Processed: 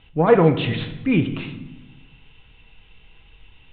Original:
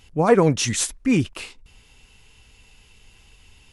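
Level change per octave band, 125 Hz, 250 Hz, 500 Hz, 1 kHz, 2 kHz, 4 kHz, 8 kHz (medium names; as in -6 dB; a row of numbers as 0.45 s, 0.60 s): +2.5 dB, +1.0 dB, +2.0 dB, +1.0 dB, +1.0 dB, -3.0 dB, under -40 dB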